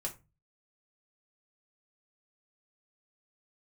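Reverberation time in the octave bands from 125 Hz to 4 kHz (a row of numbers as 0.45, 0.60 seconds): 0.55, 0.40, 0.30, 0.25, 0.25, 0.15 seconds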